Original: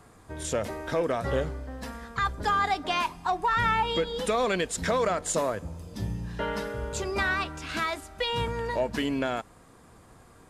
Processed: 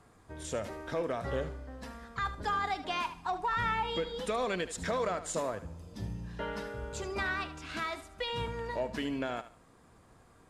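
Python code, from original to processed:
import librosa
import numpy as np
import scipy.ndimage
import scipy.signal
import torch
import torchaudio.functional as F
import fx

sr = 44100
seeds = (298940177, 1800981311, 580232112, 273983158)

p1 = fx.high_shelf(x, sr, hz=12000.0, db=-9.5)
p2 = p1 + fx.echo_thinned(p1, sr, ms=75, feedback_pct=27, hz=420.0, wet_db=-12.5, dry=0)
y = p2 * librosa.db_to_amplitude(-6.5)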